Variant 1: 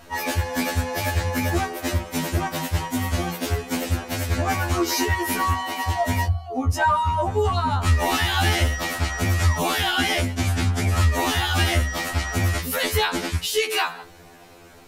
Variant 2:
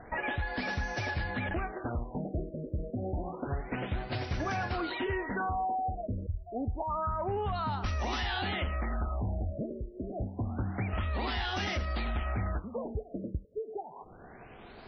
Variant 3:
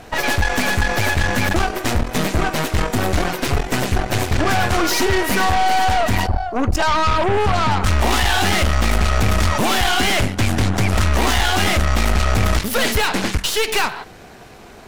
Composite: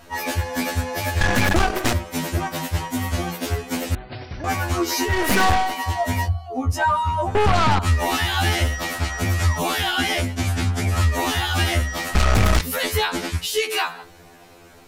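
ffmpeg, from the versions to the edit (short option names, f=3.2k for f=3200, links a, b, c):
-filter_complex "[2:a]asplit=4[a][b][c][d];[0:a]asplit=6[e][f][g][h][i][j];[e]atrim=end=1.212[k];[a]atrim=start=1.208:end=1.932[l];[f]atrim=start=1.928:end=3.952[m];[1:a]atrim=start=3.948:end=4.442[n];[g]atrim=start=4.438:end=5.29[o];[b]atrim=start=5.05:end=5.75[p];[h]atrim=start=5.51:end=7.352[q];[c]atrim=start=7.348:end=7.792[r];[i]atrim=start=7.788:end=12.152[s];[d]atrim=start=12.148:end=12.612[t];[j]atrim=start=12.608[u];[k][l]acrossfade=d=0.004:c1=hsin:c2=hsin[v];[v][m]acrossfade=d=0.004:c1=hsin:c2=hsin[w];[w][n]acrossfade=d=0.004:c1=hsin:c2=hsin[x];[x][o]acrossfade=d=0.004:c1=hsin:c2=hsin[y];[y][p]acrossfade=d=0.24:c1=tri:c2=tri[z];[z][q]acrossfade=d=0.24:c1=tri:c2=tri[aa];[aa][r]acrossfade=d=0.004:c1=hsin:c2=hsin[ab];[ab][s]acrossfade=d=0.004:c1=hsin:c2=hsin[ac];[ac][t]acrossfade=d=0.004:c1=hsin:c2=hsin[ad];[ad][u]acrossfade=d=0.004:c1=hsin:c2=hsin"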